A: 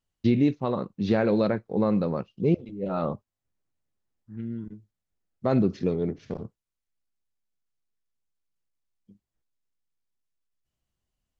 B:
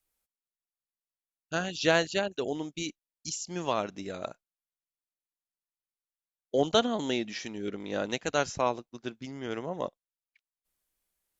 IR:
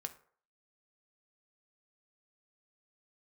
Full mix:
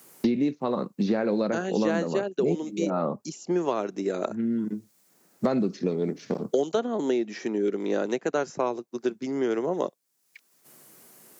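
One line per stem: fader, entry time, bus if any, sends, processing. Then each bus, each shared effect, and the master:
-1.0 dB, 0.00 s, no send, dry
-1.0 dB, 0.00 s, no send, bell 380 Hz +9 dB 0.55 oct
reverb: off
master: HPF 170 Hz 24 dB/oct; bell 3200 Hz -8 dB 1 oct; three-band squash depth 100%

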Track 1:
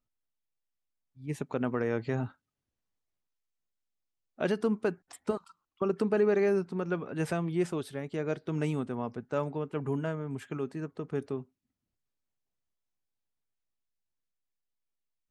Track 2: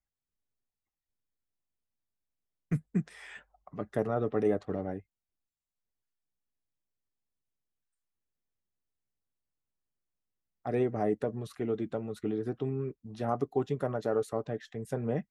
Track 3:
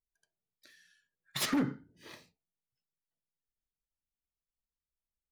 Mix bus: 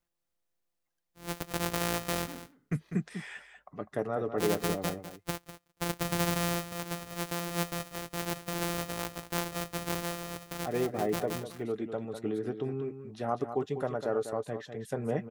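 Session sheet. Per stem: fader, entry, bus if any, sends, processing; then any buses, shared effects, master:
-2.0 dB, 0.00 s, no send, echo send -13 dB, sample sorter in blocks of 256 samples; high shelf 7700 Hz +8 dB
0.0 dB, 0.00 s, no send, echo send -9.5 dB, dry
-18.5 dB, 0.75 s, no send, echo send -16.5 dB, dry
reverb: off
echo: echo 0.199 s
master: low shelf 330 Hz -6 dB; vocal rider 2 s

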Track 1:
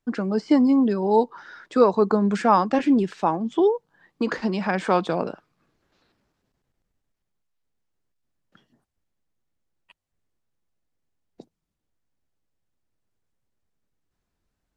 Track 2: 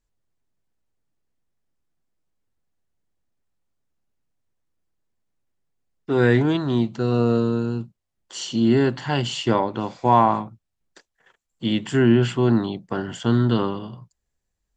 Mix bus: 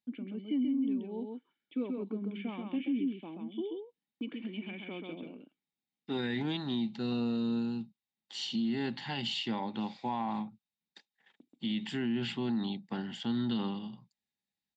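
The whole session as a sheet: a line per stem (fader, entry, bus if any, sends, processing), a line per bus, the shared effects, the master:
-1.0 dB, 0.00 s, no send, echo send -4 dB, vocal tract filter i; gate with hold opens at -49 dBFS; tilt +4 dB/oct
-17.0 dB, 0.00 s, no send, no echo send, HPF 130 Hz; band shelf 3000 Hz +12 dB; small resonant body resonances 210/820/3700 Hz, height 14 dB, ringing for 45 ms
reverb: off
echo: echo 0.132 s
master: limiter -25.5 dBFS, peak gain reduction 9.5 dB

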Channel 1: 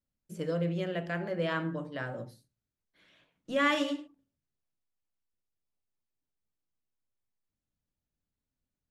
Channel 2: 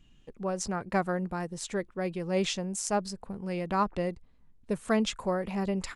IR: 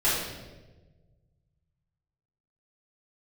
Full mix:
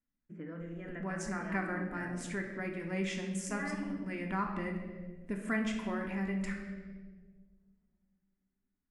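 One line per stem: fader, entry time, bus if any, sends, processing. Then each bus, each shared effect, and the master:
-4.5 dB, 0.00 s, send -16.5 dB, LPF 1600 Hz 12 dB/oct; compressor, threshold -30 dBFS, peak gain reduction 7 dB
-1.5 dB, 0.60 s, send -13.5 dB, dry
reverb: on, RT60 1.2 s, pre-delay 3 ms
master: graphic EQ 125/250/500/2000/4000 Hz -6/+10/-8/+12/-9 dB; compressor 1.5:1, threshold -50 dBFS, peak gain reduction 11.5 dB

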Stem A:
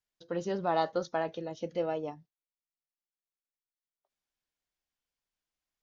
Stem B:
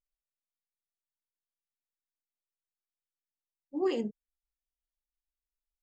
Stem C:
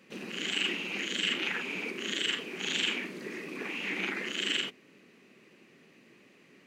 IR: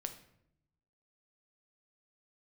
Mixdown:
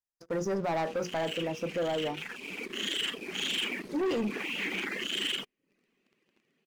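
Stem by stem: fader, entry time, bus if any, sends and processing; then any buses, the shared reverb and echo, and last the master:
-4.0 dB, 0.00 s, no send, notches 60/120/180/240/300/360/420/480 Hz; FFT band-reject 2000–4700 Hz
-3.0 dB, 0.20 s, no send, dry
-9.0 dB, 0.75 s, no send, reverb removal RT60 0.58 s; bell 3200 Hz +5 dB 0.2 oct; auto duck -10 dB, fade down 1.20 s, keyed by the first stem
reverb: off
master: sample leveller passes 3; limiter -25.5 dBFS, peak gain reduction 4 dB

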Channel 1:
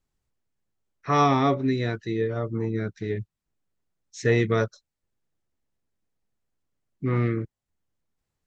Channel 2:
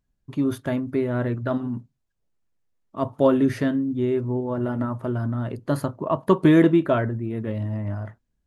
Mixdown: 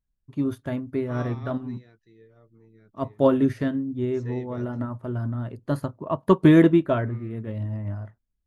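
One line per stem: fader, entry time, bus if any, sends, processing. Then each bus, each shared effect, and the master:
-14.5 dB, 0.00 s, no send, dry
+0.5 dB, 0.00 s, no send, low shelf 85 Hz +10 dB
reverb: off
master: upward expander 1.5:1, over -37 dBFS

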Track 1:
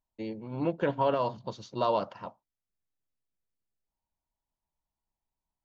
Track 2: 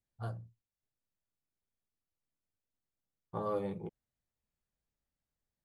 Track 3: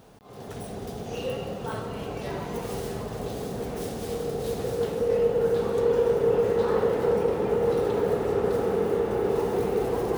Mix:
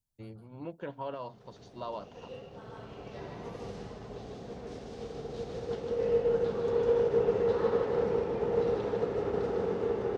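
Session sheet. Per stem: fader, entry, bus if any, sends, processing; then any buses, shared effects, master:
-11.5 dB, 0.00 s, no send, no echo send, dry
-9.0 dB, 0.00 s, no send, echo send -3.5 dB, tone controls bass +13 dB, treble +13 dB; compressor 6:1, threshold -39 dBFS, peak gain reduction 13.5 dB
-5.0 dB, 0.90 s, no send, echo send -4.5 dB, LPF 6100 Hz 24 dB/oct; upward expander 1.5:1, over -38 dBFS; auto duck -13 dB, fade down 1.85 s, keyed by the first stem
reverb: off
echo: echo 0.151 s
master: dry

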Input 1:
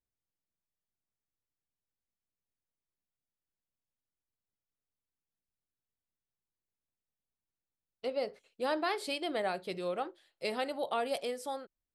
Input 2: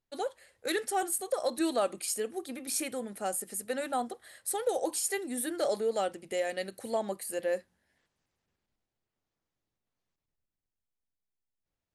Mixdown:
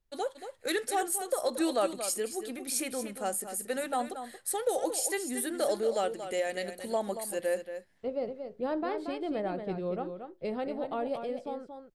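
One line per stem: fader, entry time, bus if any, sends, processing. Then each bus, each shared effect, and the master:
-3.5 dB, 0.00 s, no send, echo send -7.5 dB, low-pass opened by the level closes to 1900 Hz, open at -31.5 dBFS; tilt -4.5 dB/oct
+0.5 dB, 0.00 s, no send, echo send -10 dB, dry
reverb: off
echo: echo 0.23 s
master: dry

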